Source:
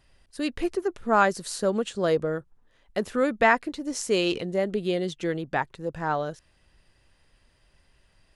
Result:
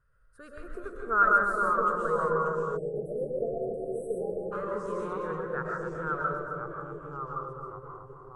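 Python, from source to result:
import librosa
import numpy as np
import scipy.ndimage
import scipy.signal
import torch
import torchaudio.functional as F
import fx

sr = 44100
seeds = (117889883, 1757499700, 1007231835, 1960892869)

y = fx.curve_eq(x, sr, hz=(150.0, 320.0, 460.0, 780.0, 1400.0, 2000.0, 2900.0, 5400.0, 8900.0), db=(0, -20, 3, -18, 12, -14, -21, -22, -11))
y = fx.rev_freeverb(y, sr, rt60_s=0.52, hf_ratio=0.4, predelay_ms=85, drr_db=-1.0)
y = fx.echo_pitch(y, sr, ms=353, semitones=-2, count=2, db_per_echo=-6.0)
y = fx.echo_filtered(y, sr, ms=266, feedback_pct=64, hz=970.0, wet_db=-3)
y = fx.spec_erase(y, sr, start_s=2.77, length_s=1.75, low_hz=830.0, high_hz=7700.0)
y = F.gain(torch.from_numpy(y), -8.0).numpy()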